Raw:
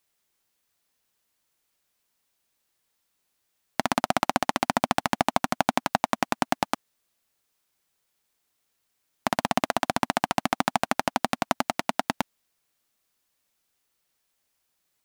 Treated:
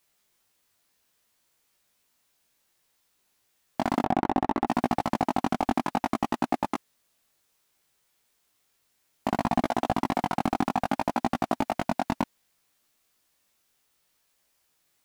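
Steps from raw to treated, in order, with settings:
0:04.02–0:04.67: low-pass filter 1,500 Hz 12 dB per octave
chorus effect 0.62 Hz, delay 16.5 ms, depth 4.7 ms
slew-rate limiting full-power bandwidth 41 Hz
level +7.5 dB

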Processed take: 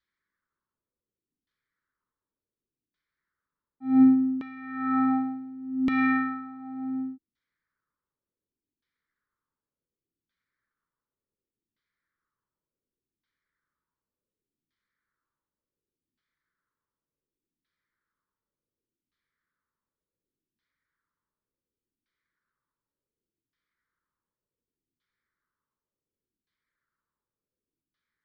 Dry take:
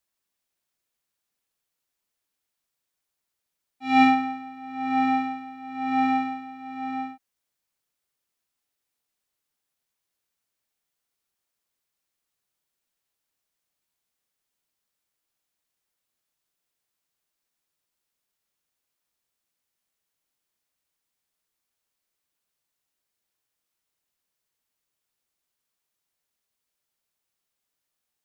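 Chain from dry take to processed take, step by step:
phaser with its sweep stopped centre 2,700 Hz, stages 6
auto-filter low-pass saw down 0.68 Hz 260–3,000 Hz
level +2.5 dB

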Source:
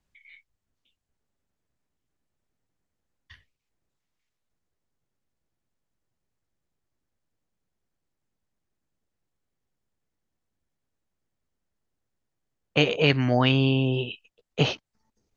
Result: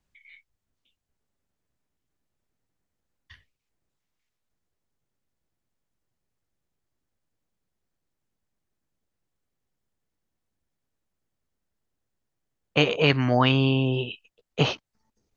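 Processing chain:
dynamic equaliser 1,100 Hz, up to +6 dB, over −42 dBFS, Q 2

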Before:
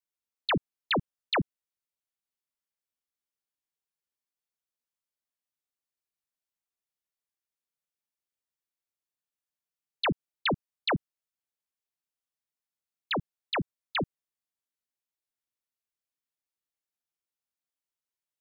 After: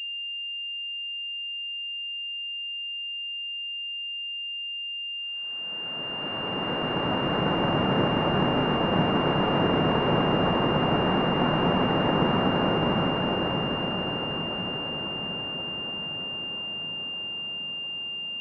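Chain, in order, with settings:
extreme stretch with random phases 5×, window 1.00 s, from 0:08.52
feedback delay with all-pass diffusion 619 ms, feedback 68%, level −4.5 dB
switching amplifier with a slow clock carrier 2,800 Hz
level +8 dB

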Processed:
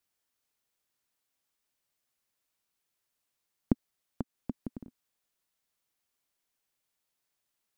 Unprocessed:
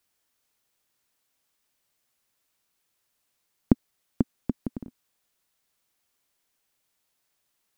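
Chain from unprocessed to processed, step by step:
0:03.72–0:04.50: downward compressor, threshold −23 dBFS, peak gain reduction 7.5 dB
level −7 dB

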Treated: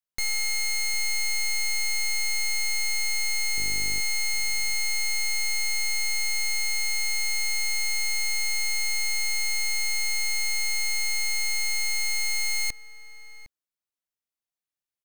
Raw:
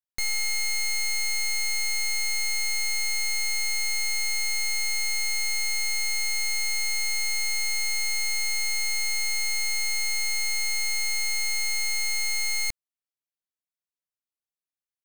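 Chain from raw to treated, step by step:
0:03.56–0:03.99: hum with harmonics 50 Hz, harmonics 10, −41 dBFS −5 dB per octave
slap from a distant wall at 130 metres, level −14 dB

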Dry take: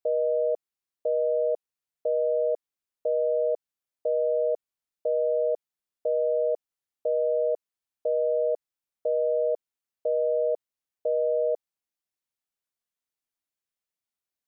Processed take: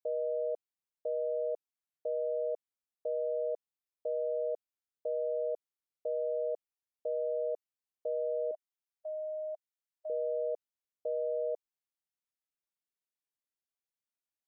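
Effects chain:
0:08.51–0:10.10: linear-phase brick-wall high-pass 600 Hz
level −8.5 dB

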